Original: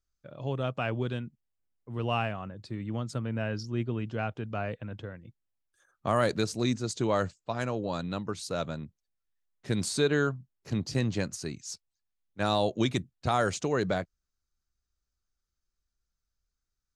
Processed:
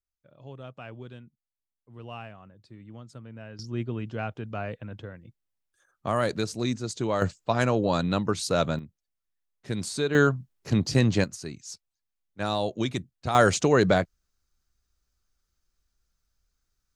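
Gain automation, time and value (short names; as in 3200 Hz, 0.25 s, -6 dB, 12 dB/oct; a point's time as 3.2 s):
-11 dB
from 3.59 s 0 dB
from 7.22 s +8 dB
from 8.79 s -1.5 dB
from 10.15 s +7 dB
from 11.24 s -1 dB
from 13.35 s +8 dB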